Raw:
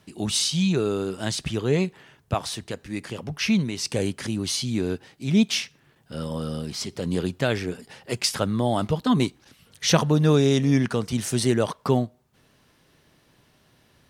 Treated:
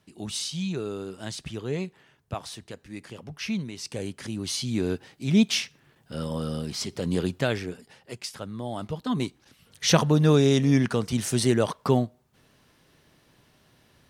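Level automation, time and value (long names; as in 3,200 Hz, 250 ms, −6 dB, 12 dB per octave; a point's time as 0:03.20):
0:04.02 −8 dB
0:04.86 −0.5 dB
0:07.35 −0.5 dB
0:08.33 −13 dB
0:09.91 −0.5 dB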